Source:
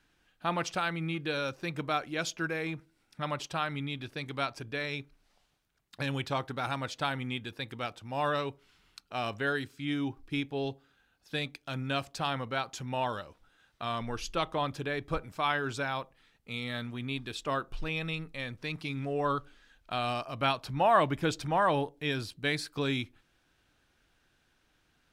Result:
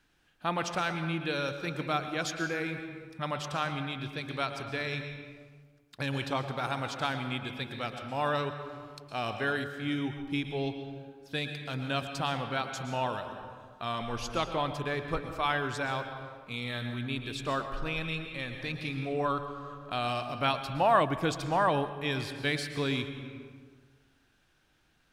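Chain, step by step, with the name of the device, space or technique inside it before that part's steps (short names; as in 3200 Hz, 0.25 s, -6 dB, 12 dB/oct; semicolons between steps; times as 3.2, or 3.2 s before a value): compressed reverb return (on a send at -4 dB: reverb RT60 1.4 s, pre-delay 0.107 s + compressor 6:1, threshold -32 dBFS, peak gain reduction 12 dB)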